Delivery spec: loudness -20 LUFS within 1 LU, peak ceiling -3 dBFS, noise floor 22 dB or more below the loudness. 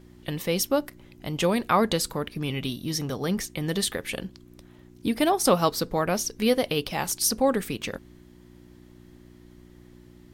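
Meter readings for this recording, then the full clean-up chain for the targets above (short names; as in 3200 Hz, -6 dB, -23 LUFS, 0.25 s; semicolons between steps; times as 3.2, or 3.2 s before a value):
hum 60 Hz; harmonics up to 360 Hz; hum level -50 dBFS; loudness -26.0 LUFS; peak -7.0 dBFS; loudness target -20.0 LUFS
-> de-hum 60 Hz, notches 6; gain +6 dB; limiter -3 dBFS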